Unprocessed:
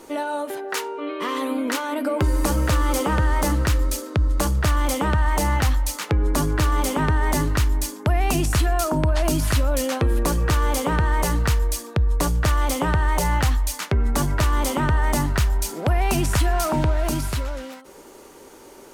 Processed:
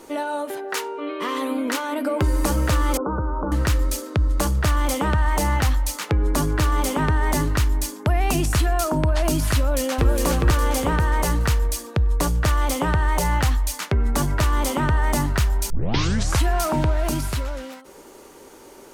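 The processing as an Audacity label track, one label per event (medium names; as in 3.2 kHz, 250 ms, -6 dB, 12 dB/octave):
2.970000	3.520000	rippled Chebyshev low-pass 1.5 kHz, ripple 6 dB
9.570000	10.090000	echo throw 410 ms, feedback 45%, level -2.5 dB
15.700000	15.700000	tape start 0.74 s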